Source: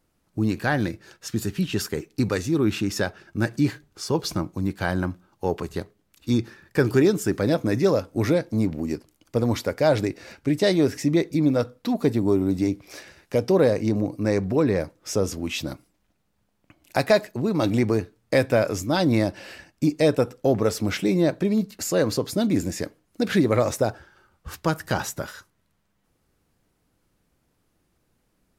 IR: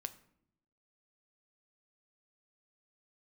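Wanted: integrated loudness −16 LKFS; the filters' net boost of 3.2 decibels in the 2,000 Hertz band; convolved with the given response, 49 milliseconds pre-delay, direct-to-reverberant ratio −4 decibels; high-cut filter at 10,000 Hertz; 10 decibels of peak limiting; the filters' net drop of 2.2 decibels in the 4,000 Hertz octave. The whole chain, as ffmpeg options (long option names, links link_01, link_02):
-filter_complex "[0:a]lowpass=10000,equalizer=frequency=2000:width_type=o:gain=5,equalizer=frequency=4000:width_type=o:gain=-4,alimiter=limit=-15.5dB:level=0:latency=1,asplit=2[link_01][link_02];[1:a]atrim=start_sample=2205,adelay=49[link_03];[link_02][link_03]afir=irnorm=-1:irlink=0,volume=6.5dB[link_04];[link_01][link_04]amix=inputs=2:normalize=0,volume=6dB"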